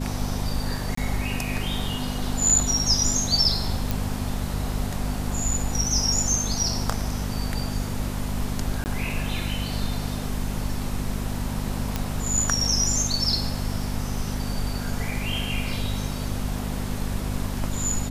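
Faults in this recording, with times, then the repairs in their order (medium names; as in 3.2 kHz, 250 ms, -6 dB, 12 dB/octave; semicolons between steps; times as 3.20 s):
hum 50 Hz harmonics 5 -30 dBFS
0.95–0.97 s: dropout 24 ms
3.91 s: pop
8.84–8.86 s: dropout 19 ms
11.96 s: pop -10 dBFS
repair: de-click; de-hum 50 Hz, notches 5; interpolate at 0.95 s, 24 ms; interpolate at 8.84 s, 19 ms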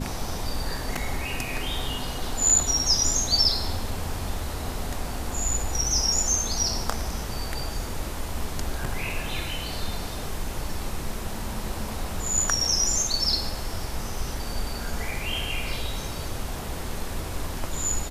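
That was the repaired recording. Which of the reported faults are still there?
nothing left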